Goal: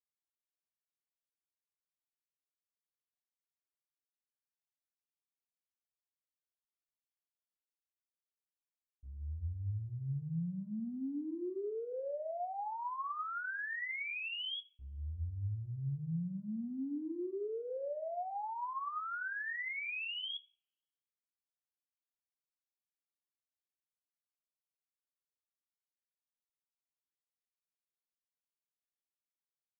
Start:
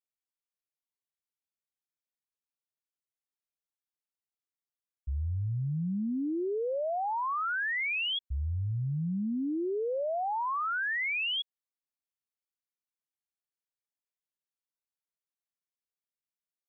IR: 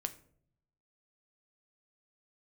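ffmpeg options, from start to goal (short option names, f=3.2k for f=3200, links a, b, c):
-filter_complex "[0:a]agate=range=-33dB:threshold=-17dB:ratio=3:detection=peak,atempo=0.56[a];[1:a]atrim=start_sample=2205[b];[a][b]afir=irnorm=-1:irlink=0,volume=16.5dB"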